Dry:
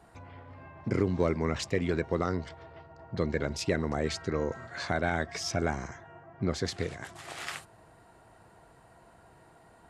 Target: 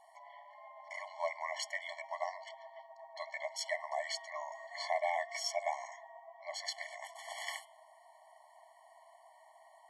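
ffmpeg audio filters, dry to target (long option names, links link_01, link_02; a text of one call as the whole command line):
ffmpeg -i in.wav -af "bandreject=frequency=231.2:width_type=h:width=4,bandreject=frequency=462.4:width_type=h:width=4,bandreject=frequency=693.6:width_type=h:width=4,bandreject=frequency=924.8:width_type=h:width=4,bandreject=frequency=1156:width_type=h:width=4,bandreject=frequency=1387.2:width_type=h:width=4,bandreject=frequency=1618.4:width_type=h:width=4,bandreject=frequency=1849.6:width_type=h:width=4,bandreject=frequency=2080.8:width_type=h:width=4,bandreject=frequency=2312:width_type=h:width=4,bandreject=frequency=2543.2:width_type=h:width=4,bandreject=frequency=2774.4:width_type=h:width=4,bandreject=frequency=3005.6:width_type=h:width=4,bandreject=frequency=3236.8:width_type=h:width=4,bandreject=frequency=3468:width_type=h:width=4,bandreject=frequency=3699.2:width_type=h:width=4,afftfilt=real='re*eq(mod(floor(b*sr/1024/580),2),1)':imag='im*eq(mod(floor(b*sr/1024/580),2),1)':win_size=1024:overlap=0.75" out.wav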